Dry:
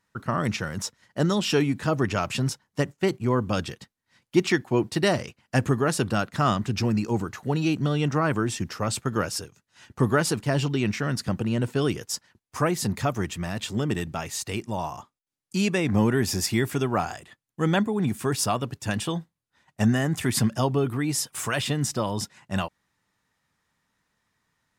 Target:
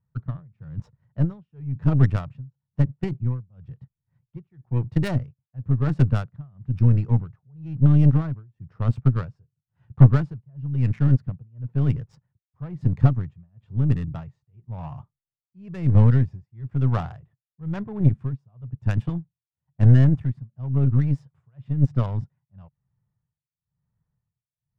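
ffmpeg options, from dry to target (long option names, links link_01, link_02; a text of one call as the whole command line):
ffmpeg -i in.wav -af "tremolo=f=1:d=0.98,adynamicsmooth=sensitivity=1.5:basefreq=880,lowshelf=frequency=190:width_type=q:width=3:gain=11.5,aeval=exprs='1.19*(cos(1*acos(clip(val(0)/1.19,-1,1)))-cos(1*PI/2))+0.188*(cos(4*acos(clip(val(0)/1.19,-1,1)))-cos(4*PI/2))+0.075*(cos(6*acos(clip(val(0)/1.19,-1,1)))-cos(6*PI/2))+0.0422*(cos(7*acos(clip(val(0)/1.19,-1,1)))-cos(7*PI/2))+0.0668*(cos(8*acos(clip(val(0)/1.19,-1,1)))-cos(8*PI/2))':channel_layout=same,volume=-4dB" out.wav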